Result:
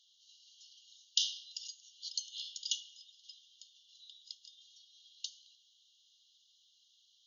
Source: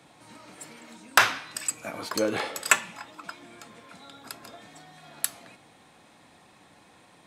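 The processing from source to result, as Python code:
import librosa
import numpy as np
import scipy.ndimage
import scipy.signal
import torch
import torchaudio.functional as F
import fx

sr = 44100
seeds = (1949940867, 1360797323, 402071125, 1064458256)

y = fx.brickwall_bandpass(x, sr, low_hz=2800.0, high_hz=6900.0)
y = F.gain(torch.from_numpy(y), -3.0).numpy()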